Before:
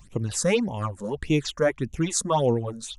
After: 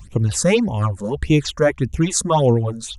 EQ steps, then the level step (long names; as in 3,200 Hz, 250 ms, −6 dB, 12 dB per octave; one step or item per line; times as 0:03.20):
parametric band 69 Hz +9.5 dB 1.6 octaves
+5.5 dB